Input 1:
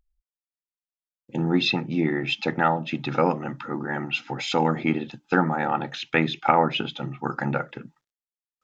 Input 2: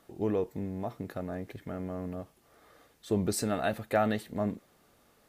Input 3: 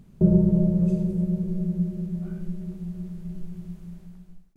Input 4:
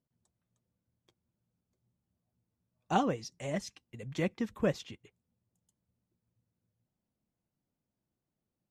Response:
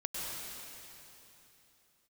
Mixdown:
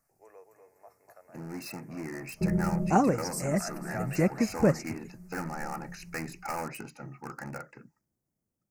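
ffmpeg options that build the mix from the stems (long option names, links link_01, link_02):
-filter_complex "[0:a]aeval=exprs='0.126*(cos(1*acos(clip(val(0)/0.126,-1,1)))-cos(1*PI/2))+0.0178*(cos(5*acos(clip(val(0)/0.126,-1,1)))-cos(5*PI/2))':channel_layout=same,volume=-19dB[link_01];[1:a]highpass=frequency=550:width=0.5412,highpass=frequency=550:width=1.3066,volume=-16.5dB,asplit=2[link_02][link_03];[link_03]volume=-6dB[link_04];[2:a]adelay=2200,volume=-15dB[link_05];[3:a]tiltshelf=frequency=800:gain=4.5,volume=-2dB,asplit=2[link_06][link_07];[link_07]apad=whole_len=298116[link_08];[link_05][link_08]sidechaincompress=threshold=-39dB:ratio=8:attack=5.5:release=716[link_09];[link_04]aecho=0:1:247|494|741|988|1235:1|0.32|0.102|0.0328|0.0105[link_10];[link_01][link_02][link_09][link_06][link_10]amix=inputs=5:normalize=0,highshelf=frequency=2500:gain=10,dynaudnorm=framelen=500:gausssize=7:maxgain=5.5dB,asuperstop=centerf=3400:order=4:qfactor=1.2"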